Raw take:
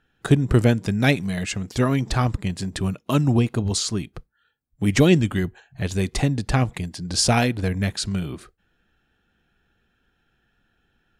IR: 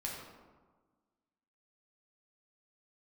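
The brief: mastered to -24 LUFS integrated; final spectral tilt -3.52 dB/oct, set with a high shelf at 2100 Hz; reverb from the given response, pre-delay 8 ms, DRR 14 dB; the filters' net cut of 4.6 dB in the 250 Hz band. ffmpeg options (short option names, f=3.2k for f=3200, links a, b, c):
-filter_complex "[0:a]equalizer=f=250:t=o:g=-6.5,highshelf=f=2.1k:g=8.5,asplit=2[a][b];[1:a]atrim=start_sample=2205,adelay=8[c];[b][c]afir=irnorm=-1:irlink=0,volume=-15dB[d];[a][d]amix=inputs=2:normalize=0,volume=-3dB"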